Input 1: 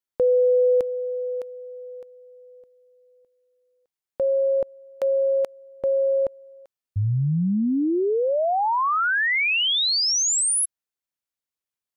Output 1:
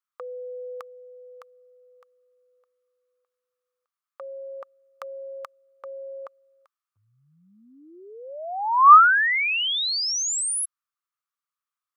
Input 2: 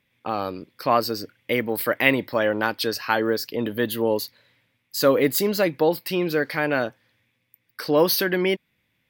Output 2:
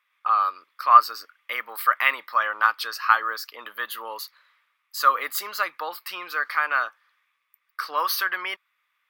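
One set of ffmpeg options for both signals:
-af "highpass=f=1.2k:t=q:w=9,volume=-4.5dB"

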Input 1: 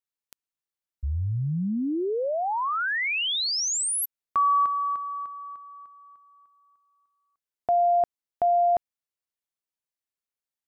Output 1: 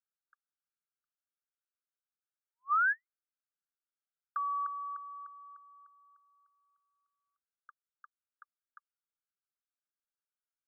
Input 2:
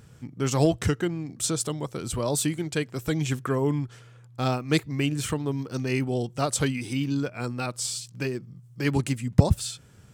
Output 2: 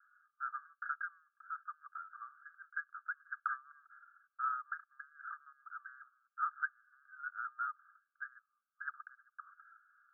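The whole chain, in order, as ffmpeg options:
-af "asuperpass=centerf=1400:order=20:qfactor=2.8"

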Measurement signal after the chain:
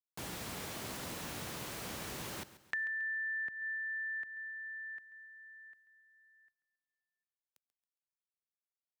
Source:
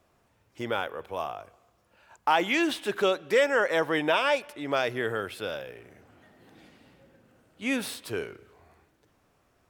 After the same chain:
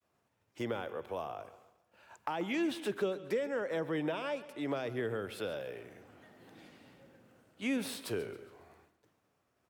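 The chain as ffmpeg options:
-filter_complex "[0:a]agate=range=-33dB:threshold=-60dB:ratio=3:detection=peak,highpass=90,adynamicequalizer=threshold=0.0126:dfrequency=490:dqfactor=1:tfrequency=490:tqfactor=1:attack=5:release=100:ratio=0.375:range=2.5:mode=boostabove:tftype=bell,acrossover=split=260[a][b];[b]acompressor=threshold=-35dB:ratio=6[c];[a][c]amix=inputs=2:normalize=0,aecho=1:1:137|274|411|548:0.158|0.065|0.0266|0.0109,volume=-1.5dB"

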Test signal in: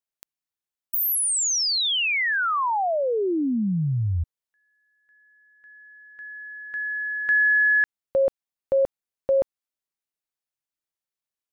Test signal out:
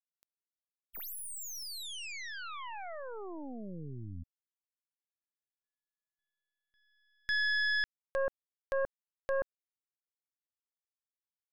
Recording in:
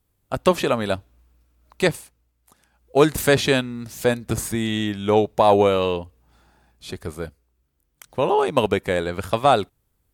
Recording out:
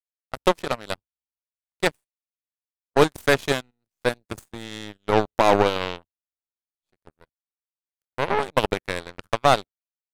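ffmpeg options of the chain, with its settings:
-af "aeval=exprs='0.708*(cos(1*acos(clip(val(0)/0.708,-1,1)))-cos(1*PI/2))+0.224*(cos(2*acos(clip(val(0)/0.708,-1,1)))-cos(2*PI/2))+0.1*(cos(7*acos(clip(val(0)/0.708,-1,1)))-cos(7*PI/2))':c=same,agate=range=-17dB:threshold=-40dB:ratio=16:release=102:detection=rms,volume=-2dB"

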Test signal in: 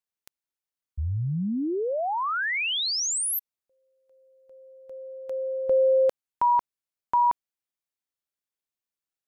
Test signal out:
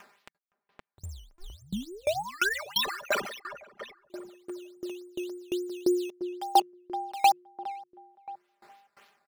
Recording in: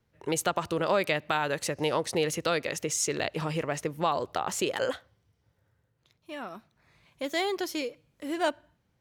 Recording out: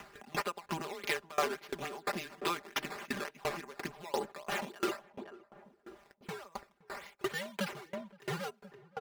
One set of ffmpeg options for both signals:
-filter_complex "[0:a]asplit=2[a][b];[b]acompressor=threshold=-32dB:ratio=6:attack=0.8:release=88:detection=peak,volume=1dB[c];[a][c]amix=inputs=2:normalize=0,afreqshift=-170,acrusher=samples=10:mix=1:aa=0.000001:lfo=1:lforange=10:lforate=3.5,agate=range=-29dB:threshold=-56dB:ratio=16:release=269:detection=peak,highpass=f=680:p=1,highshelf=f=4.8k:g=-8,aecho=1:1:5:0.93,acompressor=mode=upward:threshold=-27dB:ratio=4:attack=3.9:release=462:knee=2.83:detection=peak,asplit=2[d][e];[e]adelay=518,lowpass=f=990:p=1,volume=-8.5dB,asplit=2[f][g];[g]adelay=518,lowpass=f=990:p=1,volume=0.42,asplit=2[h][i];[i]adelay=518,lowpass=f=990:p=1,volume=0.42,asplit=2[j][k];[k]adelay=518,lowpass=f=990:p=1,volume=0.42,asplit=2[l][m];[m]adelay=518,lowpass=f=990:p=1,volume=0.42[n];[f][h][j][l][n]amix=inputs=5:normalize=0[o];[d][o]amix=inputs=2:normalize=0,aeval=exprs='val(0)*pow(10,-27*if(lt(mod(2.9*n/s,1),2*abs(2.9)/1000),1-mod(2.9*n/s,1)/(2*abs(2.9)/1000),(mod(2.9*n/s,1)-2*abs(2.9)/1000)/(1-2*abs(2.9)/1000))/20)':c=same"

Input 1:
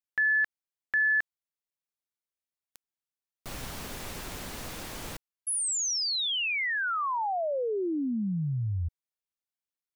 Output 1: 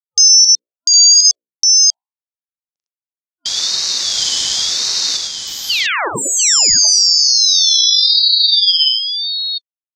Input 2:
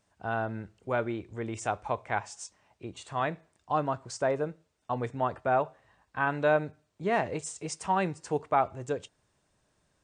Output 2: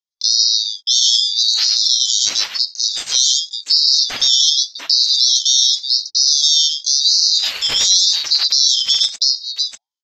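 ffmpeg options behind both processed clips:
-filter_complex "[0:a]afftfilt=real='real(if(lt(b,736),b+184*(1-2*mod(floor(b/184),2)),b),0)':imag='imag(if(lt(b,736),b+184*(1-2*mod(floor(b/184),2)),b),0)':win_size=2048:overlap=0.75,agate=range=-44dB:threshold=-58dB:ratio=16:release=46:detection=peak,highpass=43,bandreject=f=60:t=h:w=6,bandreject=f=120:t=h:w=6,bandreject=f=180:t=h:w=6,bandreject=f=240:t=h:w=6,bandreject=f=300:t=h:w=6,bandreject=f=360:t=h:w=6,acompressor=threshold=-45dB:ratio=1.5:attack=29:release=21:knee=6:detection=peak,lowpass=f=5.7k:t=q:w=4.3,afftfilt=real='re*(1-between(b*sr/4096,180,560))':imag='im*(1-between(b*sr/4096,180,560))':win_size=4096:overlap=0.75,asplit=2[a][b];[b]aecho=0:1:42|82|105|696:0.299|0.112|0.562|0.531[c];[a][c]amix=inputs=2:normalize=0,alimiter=level_in=17.5dB:limit=-1dB:release=50:level=0:latency=1,aeval=exprs='val(0)*sin(2*PI*620*n/s+620*0.6/0.89*sin(2*PI*0.89*n/s))':c=same"

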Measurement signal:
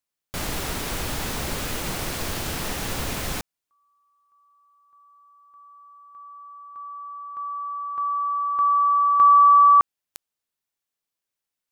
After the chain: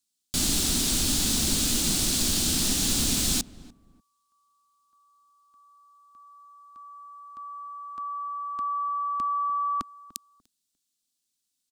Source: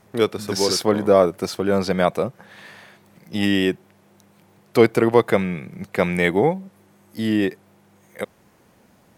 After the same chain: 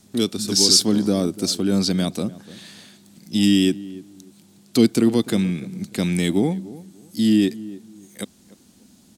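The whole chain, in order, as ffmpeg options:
-filter_complex "[0:a]equalizer=f=125:t=o:w=1:g=-5,equalizer=f=250:t=o:w=1:g=9,equalizer=f=500:t=o:w=1:g=-10,equalizer=f=1k:t=o:w=1:g=-8,equalizer=f=2k:t=o:w=1:g=-8,equalizer=f=4k:t=o:w=1:g=7,equalizer=f=8k:t=o:w=1:g=9,acrossover=split=450|3000[a][b][c];[b]acompressor=threshold=-27dB:ratio=6:attack=0.44:release=125:knee=2.83:detection=peak[d];[a][d][c]amix=inputs=3:normalize=0,asplit=2[e][f];[f]adelay=295,lowpass=f=1k:p=1,volume=-17dB,asplit=2[g][h];[h]adelay=295,lowpass=f=1k:p=1,volume=0.26[i];[g][i]amix=inputs=2:normalize=0[j];[e][j]amix=inputs=2:normalize=0,volume=1.5dB"

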